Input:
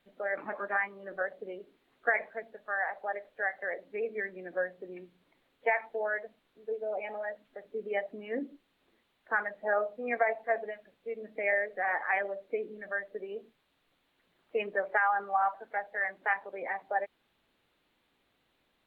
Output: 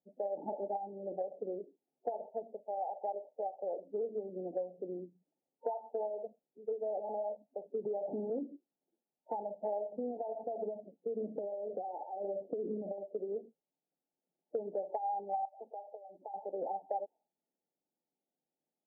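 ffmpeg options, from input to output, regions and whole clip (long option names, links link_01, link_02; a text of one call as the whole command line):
ffmpeg -i in.wav -filter_complex "[0:a]asettb=1/sr,asplit=3[link_01][link_02][link_03];[link_01]atrim=end=7.854[link_04];[link_02]atrim=start=7.85:end=8.3,asetpts=PTS-STARTPTS,afade=type=in:duration=0.004:curve=qsin,afade=type=out:start_time=0.446:duration=0.004:curve=qsin,aeval=exprs='val(0)+0.5*0.0126*sgn(val(0))':channel_layout=same,acompressor=threshold=-31dB:ratio=3:attack=3.2:release=140:knee=1:detection=peak,highpass=frequency=150:width=0.5412,highpass=frequency=150:width=1.3066[link_05];[link_03]atrim=start=8.296[link_06];[link_04][link_05]acrossfade=duration=0.004:curve1=hsin:curve2=qsin[link_07];[link_07][link_06]acrossfade=duration=0.004:curve1=qsin:curve2=hsin,asettb=1/sr,asplit=3[link_08][link_09][link_10];[link_08]atrim=end=9.924[link_11];[link_09]atrim=start=9.92:end=12.98,asetpts=PTS-STARTPTS,afade=type=in:duration=0.004:curve=qsin,afade=type=out:start_time=3.056:duration=0.004:curve=qsin,acompressor=threshold=-39dB:ratio=12:attack=3.2:release=140:knee=1:detection=peak,equalizer=frequency=240:width=0.51:gain=8.5[link_12];[link_10]atrim=start=12.976[link_13];[link_11][link_12]acrossfade=duration=0.004:curve1=hsin:curve2=qsin[link_14];[link_14][link_13]acrossfade=duration=0.004:curve1=qsin:curve2=hsin,asettb=1/sr,asplit=3[link_15][link_16][link_17];[link_15]atrim=end=15.454[link_18];[link_16]atrim=start=15.45:end=16.34,asetpts=PTS-STARTPTS,afade=type=in:duration=0.004:curve=qsin,afade=type=out:start_time=0.886:duration=0.004:curve=qsin,acompressor=threshold=-43dB:ratio=6:attack=3.2:release=140:knee=1:detection=peak,bandreject=frequency=50:width_type=h:width=6,bandreject=frequency=100:width_type=h:width=6,bandreject=frequency=150:width_type=h:width=6,bandreject=frequency=200:width_type=h:width=6,bandreject=frequency=250:width_type=h:width=6[link_19];[link_17]atrim=start=16.336[link_20];[link_18][link_19]acrossfade=duration=0.004:curve1=hsin:curve2=qsin[link_21];[link_21][link_20]acrossfade=duration=0.004:curve1=qsin:curve2=hsin,afftfilt=real='re*between(b*sr/4096,130,910)':imag='im*between(b*sr/4096,130,910)':win_size=4096:overlap=0.75,afftdn=noise_reduction=20:noise_floor=-52,acompressor=threshold=-37dB:ratio=6,volume=3.5dB" out.wav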